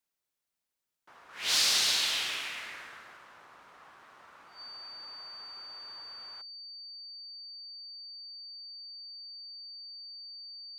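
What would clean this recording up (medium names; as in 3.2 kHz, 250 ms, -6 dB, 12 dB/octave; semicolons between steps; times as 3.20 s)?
band-stop 4.6 kHz, Q 30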